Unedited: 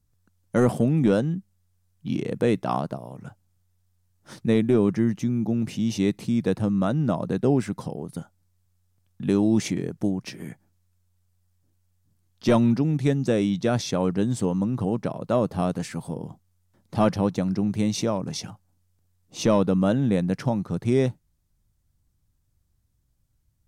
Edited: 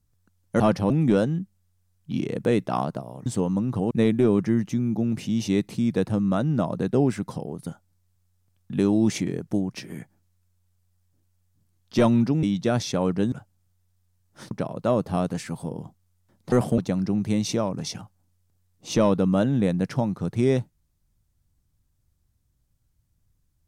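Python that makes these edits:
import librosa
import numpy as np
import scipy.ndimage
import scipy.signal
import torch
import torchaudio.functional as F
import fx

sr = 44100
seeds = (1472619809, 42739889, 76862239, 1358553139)

y = fx.edit(x, sr, fx.swap(start_s=0.6, length_s=0.26, other_s=16.97, other_length_s=0.3),
    fx.swap(start_s=3.22, length_s=1.19, other_s=14.31, other_length_s=0.65),
    fx.cut(start_s=12.93, length_s=0.49), tone=tone)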